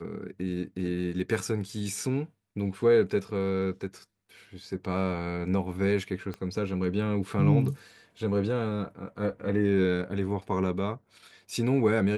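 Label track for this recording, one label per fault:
6.340000	6.340000	click −24 dBFS

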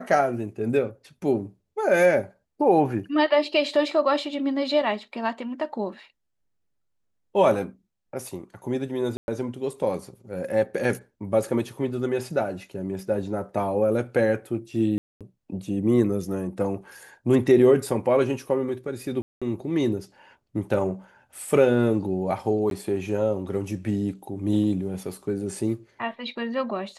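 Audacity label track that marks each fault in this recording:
9.170000	9.280000	drop-out 111 ms
14.980000	15.210000	drop-out 227 ms
19.220000	19.420000	drop-out 196 ms
22.700000	22.710000	drop-out 12 ms

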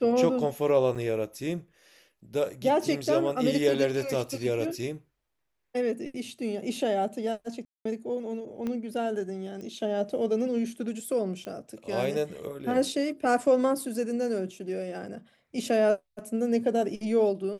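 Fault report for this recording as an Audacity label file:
0.950000	0.960000	drop-out 5.5 ms
7.650000	7.850000	drop-out 204 ms
8.670000	8.670000	click −21 dBFS
9.610000	9.610000	click −30 dBFS
11.450000	11.450000	click −26 dBFS

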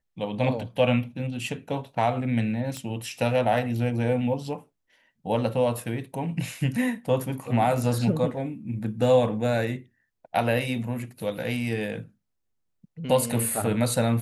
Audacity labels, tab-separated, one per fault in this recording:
2.770000	2.770000	click −19 dBFS

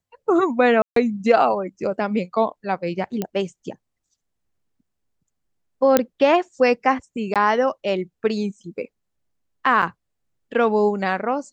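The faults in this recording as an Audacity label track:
0.820000	0.960000	drop-out 143 ms
3.220000	3.220000	click −11 dBFS
5.970000	5.970000	click −1 dBFS
7.340000	7.360000	drop-out 17 ms
9.820000	9.830000	drop-out 6.3 ms

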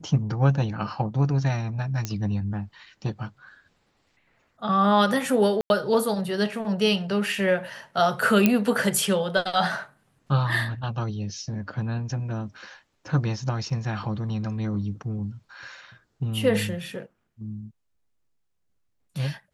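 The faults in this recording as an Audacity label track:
2.050000	2.050000	click −13 dBFS
5.610000	5.700000	drop-out 91 ms
8.460000	8.460000	click −5 dBFS
13.700000	13.700000	drop-out 3.6 ms

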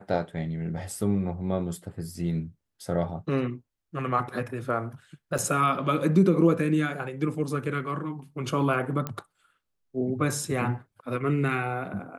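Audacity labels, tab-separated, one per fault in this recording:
5.380000	5.390000	drop-out 5.6 ms
9.070000	9.070000	click −16 dBFS

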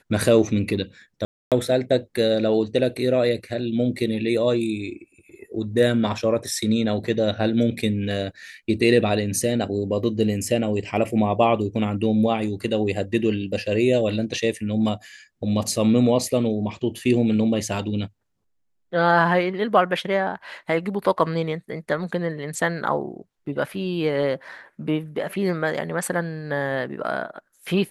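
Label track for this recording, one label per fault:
1.250000	1.520000	drop-out 267 ms
3.960000	3.960000	drop-out 3.2 ms

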